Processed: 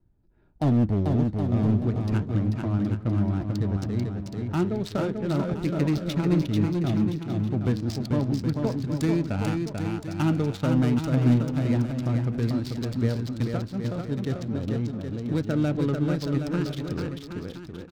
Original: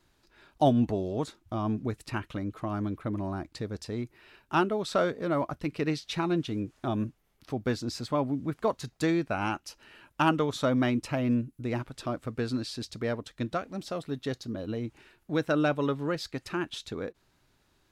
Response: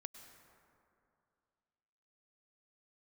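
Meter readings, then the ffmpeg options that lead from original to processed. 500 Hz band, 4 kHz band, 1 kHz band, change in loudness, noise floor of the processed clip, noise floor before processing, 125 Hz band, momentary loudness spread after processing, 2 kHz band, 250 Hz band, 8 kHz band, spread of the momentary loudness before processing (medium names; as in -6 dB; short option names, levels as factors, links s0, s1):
0.0 dB, -1.5 dB, -4.5 dB, +5.0 dB, -41 dBFS, -70 dBFS, +11.0 dB, 7 LU, -3.5 dB, +5.5 dB, -0.5 dB, 10 LU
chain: -filter_complex "[0:a]bass=f=250:g=11,treble=f=4000:g=4,bandreject=f=1100:w=8.5,acrossover=split=430[s0][s1];[s1]acompressor=threshold=0.0141:ratio=2[s2];[s0][s2]amix=inputs=2:normalize=0,asplit=2[s3][s4];[s4]aeval=exprs='sgn(val(0))*max(abs(val(0))-0.00944,0)':c=same,volume=0.596[s5];[s3][s5]amix=inputs=2:normalize=0,crystalizer=i=2:c=0,flanger=delay=9.4:depth=2:regen=82:speed=1.2:shape=sinusoidal,adynamicsmooth=sensitivity=7.5:basefreq=680,asoftclip=type=hard:threshold=0.15,aecho=1:1:440|770|1018|1203|1342:0.631|0.398|0.251|0.158|0.1"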